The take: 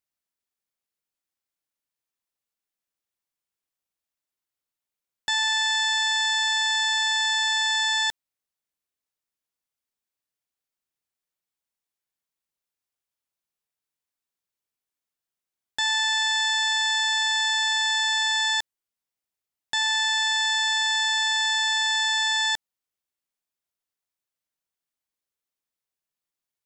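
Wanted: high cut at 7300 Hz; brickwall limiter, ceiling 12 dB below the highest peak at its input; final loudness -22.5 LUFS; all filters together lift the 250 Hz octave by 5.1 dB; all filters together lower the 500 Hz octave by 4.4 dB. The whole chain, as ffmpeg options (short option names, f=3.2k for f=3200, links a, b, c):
-af "lowpass=7.3k,equalizer=f=250:t=o:g=9,equalizer=f=500:t=o:g=-8.5,volume=11dB,alimiter=limit=-16.5dB:level=0:latency=1"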